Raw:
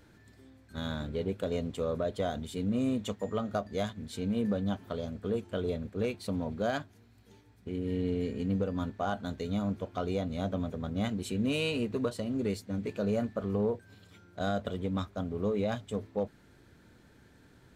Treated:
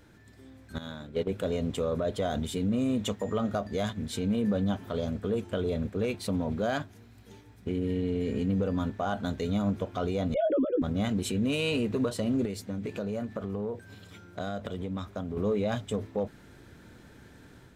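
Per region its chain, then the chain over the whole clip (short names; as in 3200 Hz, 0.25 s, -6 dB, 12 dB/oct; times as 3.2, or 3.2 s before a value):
0.78–1.31 HPF 140 Hz 6 dB/oct + gate -35 dBFS, range -11 dB
10.34–10.82 sine-wave speech + tilt -4.5 dB/oct + doubler 16 ms -6 dB
12.45–15.37 HPF 54 Hz + compressor 4:1, threshold -38 dBFS
whole clip: notch 4400 Hz, Q 19; limiter -27.5 dBFS; AGC gain up to 5 dB; gain +2 dB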